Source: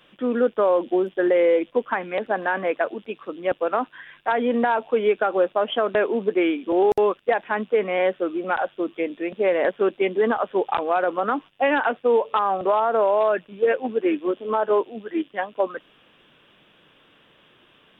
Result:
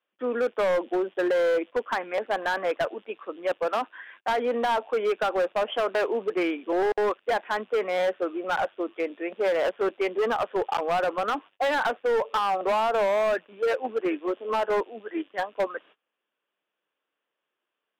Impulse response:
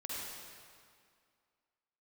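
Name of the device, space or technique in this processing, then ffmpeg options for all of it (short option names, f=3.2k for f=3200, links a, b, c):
walkie-talkie: -filter_complex "[0:a]highpass=420,lowpass=2.5k,asoftclip=type=hard:threshold=-20.5dB,agate=range=-25dB:threshold=-50dB:ratio=16:detection=peak,asettb=1/sr,asplit=3[a][b][c];[a]atrim=end=3.644[d];[b]atrim=start=3.64:end=4.3,asetpts=PTS-STARTPTS,afade=t=in:d=0.004:c=qsin,afade=t=out:st=0.656:d=0.004:c=qsin,highpass=150[e];[c]atrim=start=4.296[f];[d][e]acrossfade=d=0.004:c1=hsin:c2=qsin[g];[g][f]acrossfade=d=0.004:c1=qsin:c2=hsin"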